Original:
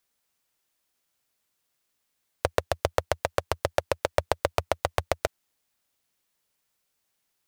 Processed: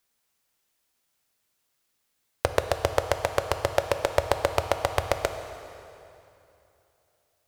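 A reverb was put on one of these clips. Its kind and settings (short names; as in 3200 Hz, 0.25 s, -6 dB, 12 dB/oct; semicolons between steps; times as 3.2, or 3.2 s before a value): plate-style reverb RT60 2.9 s, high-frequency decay 0.85×, DRR 7.5 dB; gain +1.5 dB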